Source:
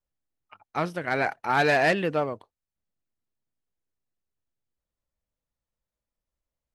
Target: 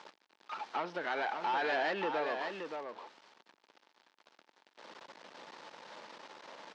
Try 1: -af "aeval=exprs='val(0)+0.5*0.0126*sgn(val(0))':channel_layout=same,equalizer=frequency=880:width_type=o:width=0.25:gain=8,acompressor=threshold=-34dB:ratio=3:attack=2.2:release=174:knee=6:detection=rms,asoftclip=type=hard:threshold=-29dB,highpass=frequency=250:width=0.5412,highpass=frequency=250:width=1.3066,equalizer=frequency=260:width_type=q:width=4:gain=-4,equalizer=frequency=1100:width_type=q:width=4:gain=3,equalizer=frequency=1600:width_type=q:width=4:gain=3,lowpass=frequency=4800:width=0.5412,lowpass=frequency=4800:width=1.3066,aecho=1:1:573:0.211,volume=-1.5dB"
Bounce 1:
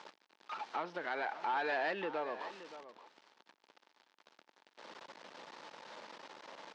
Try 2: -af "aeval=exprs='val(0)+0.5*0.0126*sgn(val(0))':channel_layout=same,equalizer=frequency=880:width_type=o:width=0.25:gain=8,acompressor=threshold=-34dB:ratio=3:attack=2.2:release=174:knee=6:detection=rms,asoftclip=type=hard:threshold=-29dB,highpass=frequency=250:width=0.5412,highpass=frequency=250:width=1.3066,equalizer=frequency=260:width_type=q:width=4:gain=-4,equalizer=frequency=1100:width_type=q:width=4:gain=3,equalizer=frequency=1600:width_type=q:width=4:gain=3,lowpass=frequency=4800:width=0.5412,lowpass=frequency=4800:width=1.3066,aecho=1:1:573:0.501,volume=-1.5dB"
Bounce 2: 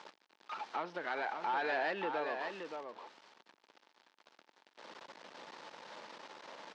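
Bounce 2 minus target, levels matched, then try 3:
downward compressor: peak gain reduction +4 dB
-af "aeval=exprs='val(0)+0.5*0.0126*sgn(val(0))':channel_layout=same,equalizer=frequency=880:width_type=o:width=0.25:gain=8,acompressor=threshold=-28dB:ratio=3:attack=2.2:release=174:knee=6:detection=rms,asoftclip=type=hard:threshold=-29dB,highpass=frequency=250:width=0.5412,highpass=frequency=250:width=1.3066,equalizer=frequency=260:width_type=q:width=4:gain=-4,equalizer=frequency=1100:width_type=q:width=4:gain=3,equalizer=frequency=1600:width_type=q:width=4:gain=3,lowpass=frequency=4800:width=0.5412,lowpass=frequency=4800:width=1.3066,aecho=1:1:573:0.501,volume=-1.5dB"

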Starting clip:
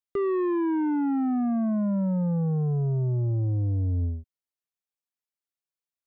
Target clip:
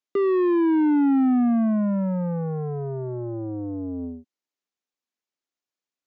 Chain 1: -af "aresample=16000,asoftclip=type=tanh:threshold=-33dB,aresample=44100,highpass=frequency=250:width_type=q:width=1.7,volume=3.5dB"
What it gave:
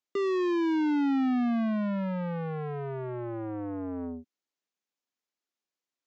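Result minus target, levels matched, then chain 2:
soft clipping: distortion +12 dB
-af "aresample=16000,asoftclip=type=tanh:threshold=-23dB,aresample=44100,highpass=frequency=250:width_type=q:width=1.7,volume=3.5dB"

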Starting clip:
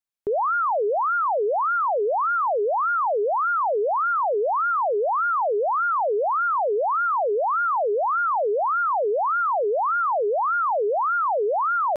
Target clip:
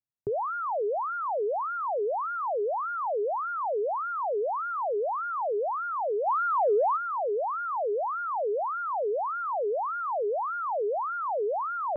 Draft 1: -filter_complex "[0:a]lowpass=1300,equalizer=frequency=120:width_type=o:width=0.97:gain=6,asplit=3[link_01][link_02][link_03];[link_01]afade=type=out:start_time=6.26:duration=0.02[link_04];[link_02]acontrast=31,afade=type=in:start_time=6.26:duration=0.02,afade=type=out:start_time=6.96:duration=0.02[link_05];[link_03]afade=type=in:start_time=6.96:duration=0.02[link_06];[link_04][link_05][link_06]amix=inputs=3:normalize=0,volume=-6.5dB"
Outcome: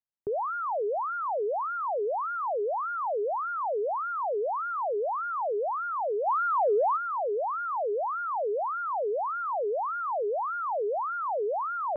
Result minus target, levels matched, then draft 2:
125 Hz band −8.0 dB
-filter_complex "[0:a]lowpass=1300,equalizer=frequency=120:width_type=o:width=0.97:gain=17,asplit=3[link_01][link_02][link_03];[link_01]afade=type=out:start_time=6.26:duration=0.02[link_04];[link_02]acontrast=31,afade=type=in:start_time=6.26:duration=0.02,afade=type=out:start_time=6.96:duration=0.02[link_05];[link_03]afade=type=in:start_time=6.96:duration=0.02[link_06];[link_04][link_05][link_06]amix=inputs=3:normalize=0,volume=-6.5dB"

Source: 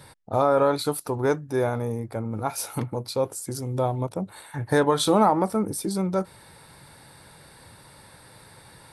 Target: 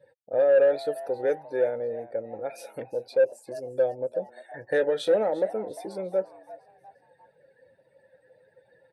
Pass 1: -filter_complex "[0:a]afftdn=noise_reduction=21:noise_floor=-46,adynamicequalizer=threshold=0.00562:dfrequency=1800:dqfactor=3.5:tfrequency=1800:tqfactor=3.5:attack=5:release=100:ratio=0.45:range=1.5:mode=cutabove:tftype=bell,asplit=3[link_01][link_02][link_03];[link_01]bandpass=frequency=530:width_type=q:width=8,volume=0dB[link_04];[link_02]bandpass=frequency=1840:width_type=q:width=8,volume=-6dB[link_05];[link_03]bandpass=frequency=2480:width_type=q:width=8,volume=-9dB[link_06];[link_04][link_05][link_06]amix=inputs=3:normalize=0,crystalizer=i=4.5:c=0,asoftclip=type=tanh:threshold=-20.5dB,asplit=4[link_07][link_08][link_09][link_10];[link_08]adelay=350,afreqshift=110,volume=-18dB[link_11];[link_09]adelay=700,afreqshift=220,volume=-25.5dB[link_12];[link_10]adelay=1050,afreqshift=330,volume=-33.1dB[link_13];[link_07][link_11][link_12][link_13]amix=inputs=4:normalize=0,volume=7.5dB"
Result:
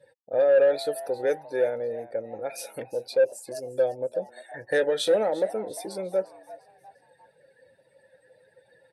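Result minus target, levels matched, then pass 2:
8,000 Hz band +10.0 dB
-filter_complex "[0:a]afftdn=noise_reduction=21:noise_floor=-46,adynamicequalizer=threshold=0.00562:dfrequency=1800:dqfactor=3.5:tfrequency=1800:tqfactor=3.5:attack=5:release=100:ratio=0.45:range=1.5:mode=cutabove:tftype=bell,asplit=3[link_01][link_02][link_03];[link_01]bandpass=frequency=530:width_type=q:width=8,volume=0dB[link_04];[link_02]bandpass=frequency=1840:width_type=q:width=8,volume=-6dB[link_05];[link_03]bandpass=frequency=2480:width_type=q:width=8,volume=-9dB[link_06];[link_04][link_05][link_06]amix=inputs=3:normalize=0,highshelf=frequency=3000:gain=-11.5,crystalizer=i=4.5:c=0,asoftclip=type=tanh:threshold=-20.5dB,asplit=4[link_07][link_08][link_09][link_10];[link_08]adelay=350,afreqshift=110,volume=-18dB[link_11];[link_09]adelay=700,afreqshift=220,volume=-25.5dB[link_12];[link_10]adelay=1050,afreqshift=330,volume=-33.1dB[link_13];[link_07][link_11][link_12][link_13]amix=inputs=4:normalize=0,volume=7.5dB"

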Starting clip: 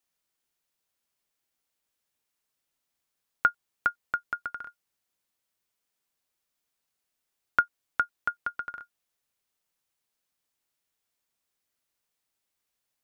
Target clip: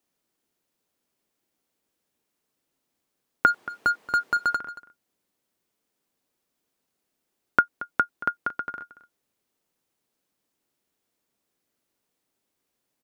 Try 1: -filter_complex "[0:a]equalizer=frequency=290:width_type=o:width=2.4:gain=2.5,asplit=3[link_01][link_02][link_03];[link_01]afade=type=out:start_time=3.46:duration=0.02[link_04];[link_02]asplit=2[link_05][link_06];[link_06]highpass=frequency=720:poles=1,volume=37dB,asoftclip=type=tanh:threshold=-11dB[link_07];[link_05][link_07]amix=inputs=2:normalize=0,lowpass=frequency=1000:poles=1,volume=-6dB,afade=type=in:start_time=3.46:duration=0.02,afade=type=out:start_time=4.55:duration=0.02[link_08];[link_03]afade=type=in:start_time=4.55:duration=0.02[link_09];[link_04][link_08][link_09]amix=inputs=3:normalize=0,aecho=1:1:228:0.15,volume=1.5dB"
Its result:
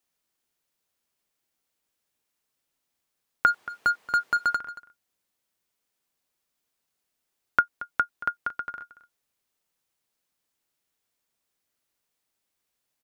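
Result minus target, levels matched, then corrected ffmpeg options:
250 Hz band −7.0 dB
-filter_complex "[0:a]equalizer=frequency=290:width_type=o:width=2.4:gain=12,asplit=3[link_01][link_02][link_03];[link_01]afade=type=out:start_time=3.46:duration=0.02[link_04];[link_02]asplit=2[link_05][link_06];[link_06]highpass=frequency=720:poles=1,volume=37dB,asoftclip=type=tanh:threshold=-11dB[link_07];[link_05][link_07]amix=inputs=2:normalize=0,lowpass=frequency=1000:poles=1,volume=-6dB,afade=type=in:start_time=3.46:duration=0.02,afade=type=out:start_time=4.55:duration=0.02[link_08];[link_03]afade=type=in:start_time=4.55:duration=0.02[link_09];[link_04][link_08][link_09]amix=inputs=3:normalize=0,aecho=1:1:228:0.15,volume=1.5dB"

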